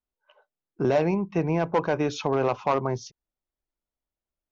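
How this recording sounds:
background noise floor −92 dBFS
spectral slope −6.0 dB per octave

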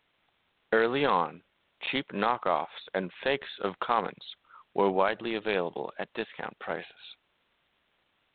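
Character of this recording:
a quantiser's noise floor 10 bits, dither triangular
G.726

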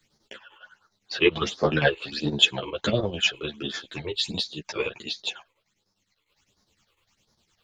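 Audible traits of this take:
phaser sweep stages 8, 1.4 Hz, lowest notch 200–2,700 Hz
chopped level 9.9 Hz, depth 60%, duty 65%
a shimmering, thickened sound

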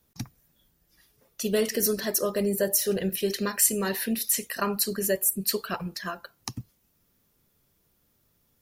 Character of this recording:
background noise floor −70 dBFS
spectral slope −2.5 dB per octave

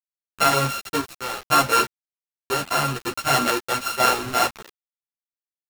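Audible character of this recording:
a buzz of ramps at a fixed pitch in blocks of 32 samples
sample-and-hold tremolo 2 Hz, depth 85%
a quantiser's noise floor 6 bits, dither none
a shimmering, thickened sound

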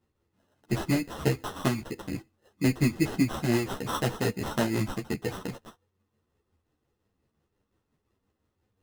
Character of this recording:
tremolo triangle 5.7 Hz, depth 50%
aliases and images of a low sample rate 2,300 Hz, jitter 0%
a shimmering, thickened sound

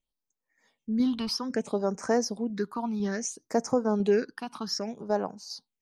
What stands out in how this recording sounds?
tremolo saw down 2 Hz, depth 35%
phaser sweep stages 6, 0.61 Hz, lowest notch 490–3,500 Hz

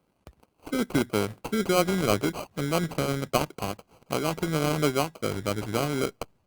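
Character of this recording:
aliases and images of a low sample rate 1,800 Hz, jitter 0%
Opus

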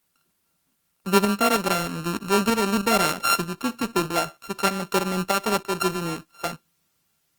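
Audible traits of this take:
a buzz of ramps at a fixed pitch in blocks of 32 samples
tremolo saw up 3.2 Hz, depth 50%
a quantiser's noise floor 12 bits, dither triangular
Opus

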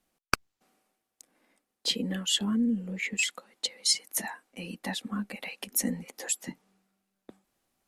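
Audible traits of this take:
background noise floor −84 dBFS
spectral slope −3.0 dB per octave

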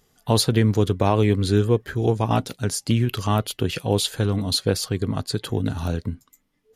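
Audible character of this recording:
background noise floor −68 dBFS
spectral slope −5.5 dB per octave

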